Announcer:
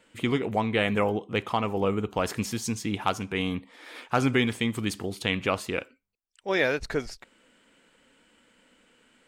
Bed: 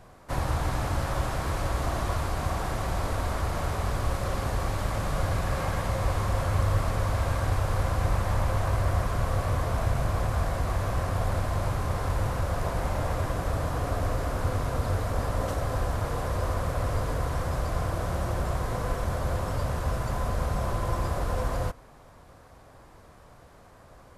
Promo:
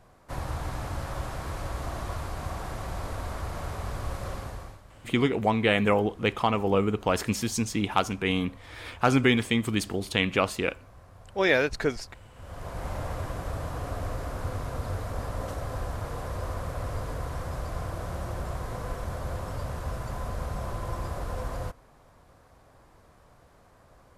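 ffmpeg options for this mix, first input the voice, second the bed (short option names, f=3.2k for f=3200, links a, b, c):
-filter_complex "[0:a]adelay=4900,volume=2dB[a];[1:a]volume=13dB,afade=t=out:st=4.29:d=0.52:silence=0.125893,afade=t=in:st=12.34:d=0.57:silence=0.11885[b];[a][b]amix=inputs=2:normalize=0"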